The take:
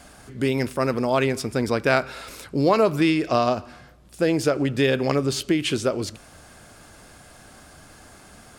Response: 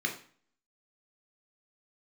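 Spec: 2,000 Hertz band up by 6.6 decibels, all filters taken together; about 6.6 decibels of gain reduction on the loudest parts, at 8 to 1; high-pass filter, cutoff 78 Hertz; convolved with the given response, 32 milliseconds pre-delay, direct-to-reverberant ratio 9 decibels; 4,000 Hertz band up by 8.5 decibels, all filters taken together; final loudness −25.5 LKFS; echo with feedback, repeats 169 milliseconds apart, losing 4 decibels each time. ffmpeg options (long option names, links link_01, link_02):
-filter_complex "[0:a]highpass=78,equalizer=frequency=2000:width_type=o:gain=6,equalizer=frequency=4000:width_type=o:gain=9,acompressor=threshold=-19dB:ratio=8,aecho=1:1:169|338|507|676|845|1014|1183|1352|1521:0.631|0.398|0.25|0.158|0.0994|0.0626|0.0394|0.0249|0.0157,asplit=2[link_01][link_02];[1:a]atrim=start_sample=2205,adelay=32[link_03];[link_02][link_03]afir=irnorm=-1:irlink=0,volume=-15.5dB[link_04];[link_01][link_04]amix=inputs=2:normalize=0,volume=-3dB"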